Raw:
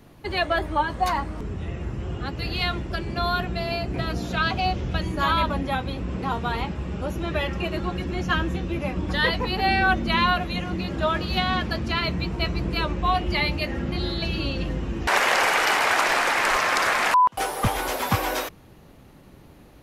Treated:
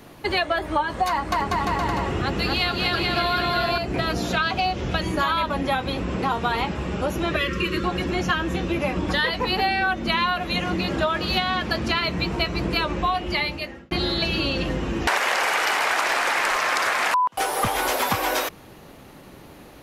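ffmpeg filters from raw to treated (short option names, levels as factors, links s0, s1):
-filter_complex "[0:a]asettb=1/sr,asplit=3[s0][s1][s2];[s0]atrim=end=1.084[s3];[s1]atrim=start=1.08:end=3.78,asetpts=PTS-STARTPTS,afade=t=in:d=0.004:c=qsin,afade=t=out:st=2.696:d=0.004:c=qsin,aecho=1:1:240|432|585.6|708.5|806.8|885.4:0.794|0.631|0.501|0.398|0.316|0.251,atrim=end_sample=119070[s4];[s2]atrim=start=3.776[s5];[s3][s4]acrossfade=d=0.004:c1=hsin:c2=qsin[s6];[s6][s5]acrossfade=d=0.004:c1=qsin:c2=hsin,asettb=1/sr,asplit=3[s7][s8][s9];[s7]atrim=end=7.364[s10];[s8]atrim=start=7.36:end=7.84,asetpts=PTS-STARTPTS,afade=t=in:d=0.004:c=qsin,afade=t=out:st=0.476:d=0.004:c=qsin,asuperstop=centerf=750:order=8:qfactor=1.6[s11];[s9]atrim=start=7.836[s12];[s10][s11]acrossfade=d=0.004:c1=hsin:c2=qsin[s13];[s13][s12]acrossfade=d=0.004:c1=qsin:c2=hsin,asplit=2[s14][s15];[s14]atrim=end=13.91,asetpts=PTS-STARTPTS,afade=t=out:st=12.94:d=0.97[s16];[s15]atrim=start=13.91,asetpts=PTS-STARTPTS,afade=t=in:d=0.004:c=hsin[s17];[s16][s17]concat=n=2:v=0:a=1,lowshelf=f=200:g=-10,acompressor=threshold=0.0398:ratio=6,volume=2.66"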